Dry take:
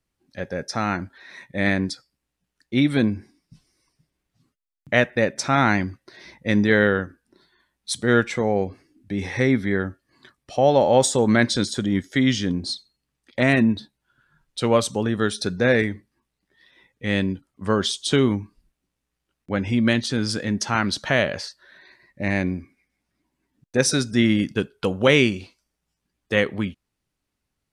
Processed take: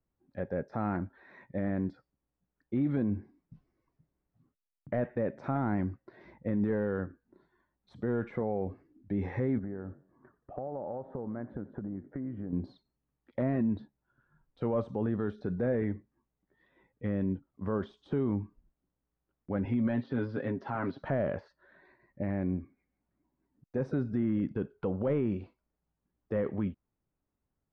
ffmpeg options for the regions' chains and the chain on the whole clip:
-filter_complex "[0:a]asettb=1/sr,asplit=3[s0][s1][s2];[s0]atrim=end=9.584[s3];[s1]atrim=start=9.58:end=12.53,asetpts=PTS-STARTPTS,afade=t=in:d=0.004:c=qsin,afade=t=out:st=2.946:d=0.004:c=qsin,lowpass=f=1500:w=0.5412,lowpass=f=1500:w=1.3066,acompressor=threshold=0.0316:ratio=12:attack=3.2:release=140:knee=1:detection=peak,asplit=4[s4][s5][s6][s7];[s5]adelay=88,afreqshift=48,volume=0.126[s8];[s6]adelay=176,afreqshift=96,volume=0.0376[s9];[s7]adelay=264,afreqshift=144,volume=0.0114[s10];[s4][s8][s9][s10]amix=inputs=4:normalize=0,atrim=end_sample=130095[s11];[s2]atrim=start=12.526[s12];[s3][s11]acrossfade=d=0.004:c1=hsin:c2=qsin[s13];[s13][s12]acrossfade=d=0.004:c1=qsin:c2=hsin,asettb=1/sr,asplit=3[s14][s15][s16];[s14]atrim=end=19.654[s17];[s15]atrim=start=19.65:end=21.02,asetpts=PTS-STARTPTS,afade=t=in:d=0.004:c=qsin,afade=t=out:st=1.366:d=0.004:c=qsin,highpass=f=220:p=1,highshelf=f=6300:t=q:w=1.5:g=-12,aecho=1:1:7.4:0.62,atrim=end_sample=60417[s18];[s16]atrim=start=21.016[s19];[s17][s18]acrossfade=d=0.004:c1=hsin:c2=qsin[s20];[s20][s19]acrossfade=d=0.004:c1=qsin:c2=hsin,deesser=1,lowpass=1100,alimiter=limit=0.119:level=0:latency=1:release=29,volume=0.668"

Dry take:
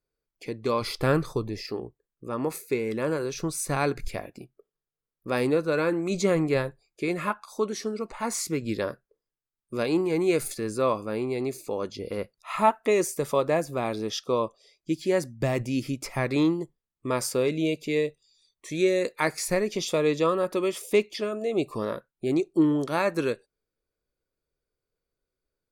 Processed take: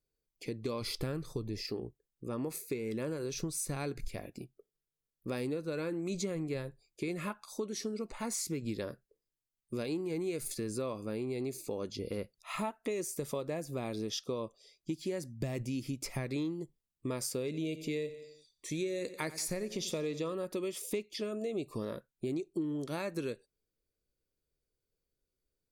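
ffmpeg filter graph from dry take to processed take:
-filter_complex "[0:a]asettb=1/sr,asplit=3[s0][s1][s2];[s0]atrim=end=17.454[s3];[s1]atrim=start=17.45:end=20.33,asetpts=PTS-STARTPTS,afade=t=in:d=0.004:c=qsin,afade=t=out:st=2.876:d=0.004:c=qsin,deesser=0.35,aecho=1:1:88|176|264|352:0.141|0.072|0.0367|0.0187,atrim=end_sample=127008[s4];[s2]atrim=start=20.326[s5];[s3][s4]acrossfade=d=0.004:c1=hsin:c2=qsin[s6];[s6][s5]acrossfade=d=0.004:c1=qsin:c2=hsin,equalizer=f=1100:t=o:w=2.2:g=-9,acompressor=threshold=0.0224:ratio=6"

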